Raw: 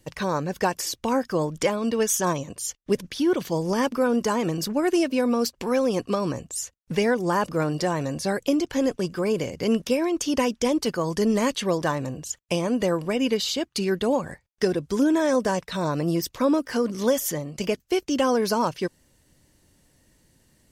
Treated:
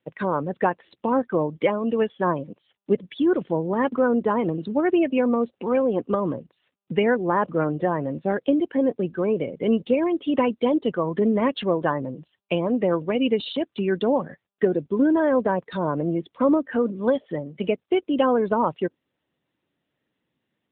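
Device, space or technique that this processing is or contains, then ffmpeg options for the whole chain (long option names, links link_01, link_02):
mobile call with aggressive noise cancelling: -af "highpass=160,afftdn=noise_reduction=15:noise_floor=-32,volume=2.5dB" -ar 8000 -c:a libopencore_amrnb -b:a 10200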